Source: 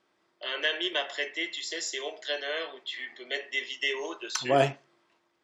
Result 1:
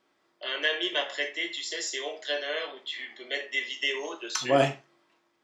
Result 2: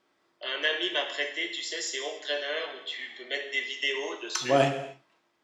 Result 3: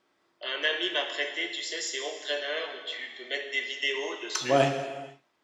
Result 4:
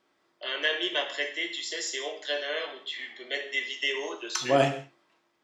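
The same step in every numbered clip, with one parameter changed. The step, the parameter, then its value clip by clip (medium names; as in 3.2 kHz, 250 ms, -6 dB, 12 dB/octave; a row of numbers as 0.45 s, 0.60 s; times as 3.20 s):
gated-style reverb, gate: 110 ms, 310 ms, 510 ms, 210 ms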